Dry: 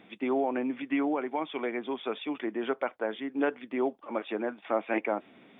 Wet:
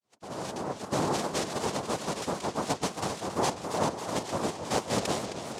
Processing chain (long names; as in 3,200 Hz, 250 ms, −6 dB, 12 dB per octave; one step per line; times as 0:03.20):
fade in at the beginning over 1.13 s
cochlear-implant simulation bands 2
feedback echo with a swinging delay time 268 ms, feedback 74%, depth 191 cents, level −9.5 dB